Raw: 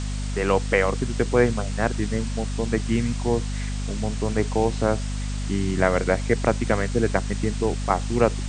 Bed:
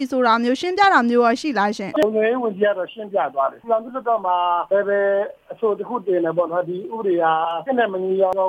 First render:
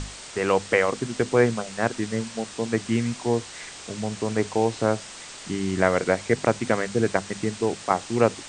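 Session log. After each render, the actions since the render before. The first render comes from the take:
mains-hum notches 50/100/150/200/250 Hz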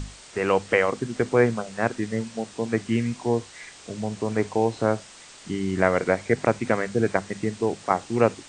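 noise reduction from a noise print 6 dB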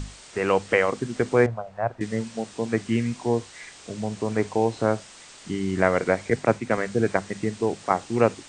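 0:01.46–0:02.01: drawn EQ curve 120 Hz 0 dB, 230 Hz −16 dB, 440 Hz −10 dB, 650 Hz +3 dB, 1,300 Hz −7 dB, 8,200 Hz −25 dB
0:06.30–0:06.78: multiband upward and downward expander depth 100%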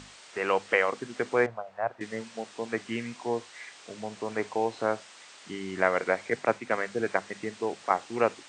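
high-pass filter 760 Hz 6 dB per octave
high-shelf EQ 6,300 Hz −11.5 dB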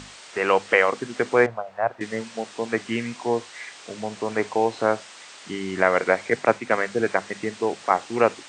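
level +6.5 dB
brickwall limiter −3 dBFS, peak gain reduction 2.5 dB

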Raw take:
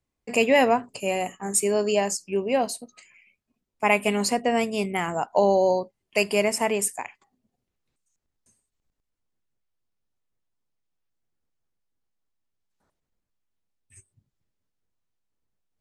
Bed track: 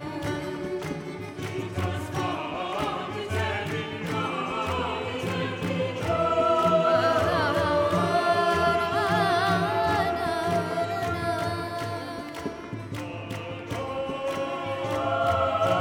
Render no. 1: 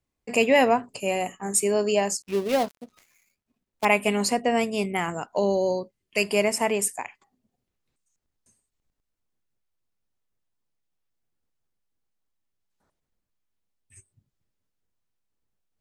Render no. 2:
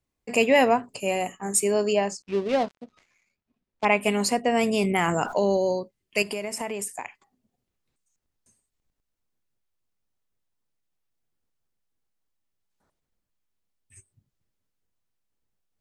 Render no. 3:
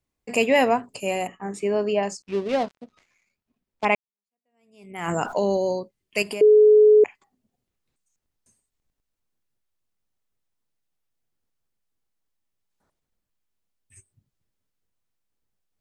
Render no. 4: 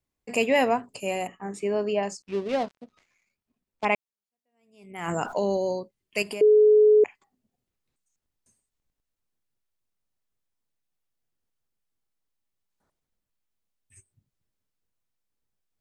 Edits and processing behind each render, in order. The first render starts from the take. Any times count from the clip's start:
0:02.22–0:03.85: gap after every zero crossing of 0.16 ms; 0:05.10–0:06.23: parametric band 790 Hz −9 dB 0.85 octaves
0:01.93–0:04.01: high-frequency loss of the air 110 metres; 0:04.56–0:05.57: envelope flattener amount 70%; 0:06.22–0:07.04: downward compressor, threshold −27 dBFS
0:01.27–0:02.03: low-pass filter 2,800 Hz; 0:03.95–0:05.11: fade in exponential; 0:06.41–0:07.04: beep over 425 Hz −10 dBFS
level −3 dB

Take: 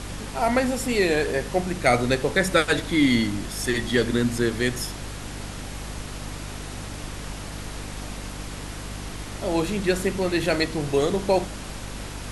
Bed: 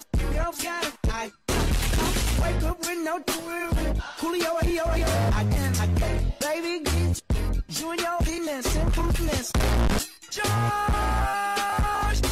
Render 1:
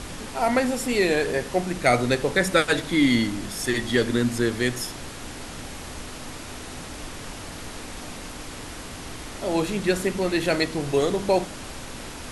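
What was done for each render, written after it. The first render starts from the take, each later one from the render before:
hum removal 50 Hz, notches 4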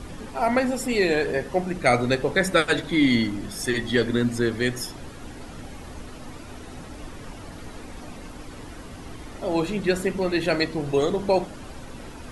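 broadband denoise 10 dB, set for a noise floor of −38 dBFS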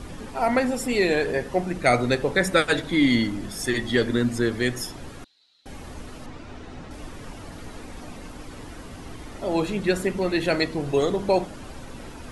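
0:05.24–0:05.66: resonant band-pass 4,000 Hz, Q 13
0:06.26–0:06.91: high-frequency loss of the air 90 metres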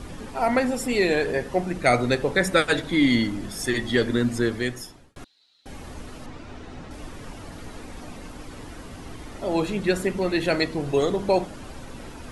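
0:04.46–0:05.16: fade out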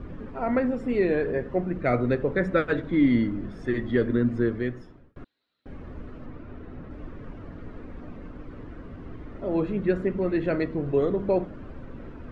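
low-pass filter 1,300 Hz 12 dB per octave
parametric band 820 Hz −9.5 dB 0.66 octaves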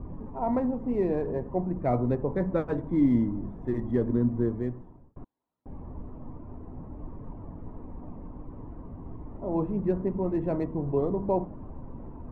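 adaptive Wiener filter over 9 samples
drawn EQ curve 170 Hz 0 dB, 530 Hz −5 dB, 960 Hz +5 dB, 1,400 Hz −15 dB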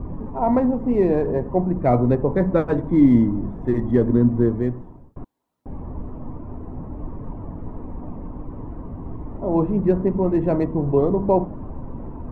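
level +8.5 dB

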